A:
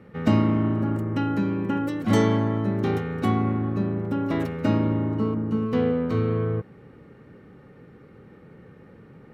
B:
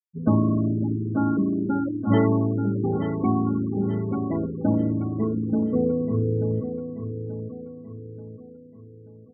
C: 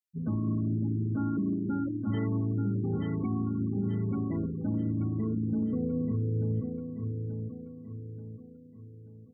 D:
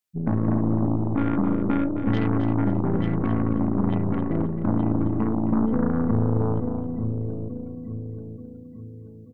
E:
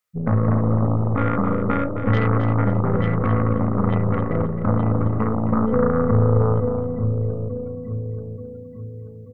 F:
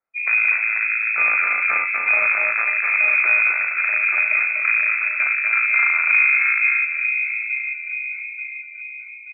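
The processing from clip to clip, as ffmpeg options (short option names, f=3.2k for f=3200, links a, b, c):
-filter_complex "[0:a]afftfilt=real='re*gte(hypot(re,im),0.112)':imag='im*gte(hypot(re,im),0.112)':win_size=1024:overlap=0.75,asplit=2[a][b];[b]aecho=0:1:883|1766|2649|3532|4415:0.376|0.165|0.0728|0.032|0.0141[c];[a][c]amix=inputs=2:normalize=0"
-af "equalizer=f=680:w=0.72:g=-14,alimiter=limit=-22.5dB:level=0:latency=1:release=63"
-filter_complex "[0:a]aeval=exprs='0.0794*(cos(1*acos(clip(val(0)/0.0794,-1,1)))-cos(1*PI/2))+0.02*(cos(3*acos(clip(val(0)/0.0794,-1,1)))-cos(3*PI/2))+0.00891*(cos(4*acos(clip(val(0)/0.0794,-1,1)))-cos(4*PI/2))+0.01*(cos(5*acos(clip(val(0)/0.0794,-1,1)))-cos(5*PI/2))':c=same,asplit=2[a][b];[b]aecho=0:1:266|532|798:0.316|0.0885|0.0248[c];[a][c]amix=inputs=2:normalize=0,volume=9dB"
-af "equalizer=f=100:t=o:w=0.33:g=8,equalizer=f=315:t=o:w=0.33:g=-11,equalizer=f=500:t=o:w=0.33:g=11,equalizer=f=1.25k:t=o:w=0.33:g=12,equalizer=f=2k:t=o:w=0.33:g=7,volume=2dB"
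-af "lowpass=f=2.2k:t=q:w=0.5098,lowpass=f=2.2k:t=q:w=0.6013,lowpass=f=2.2k:t=q:w=0.9,lowpass=f=2.2k:t=q:w=2.563,afreqshift=-2600,aecho=1:1:244:0.631"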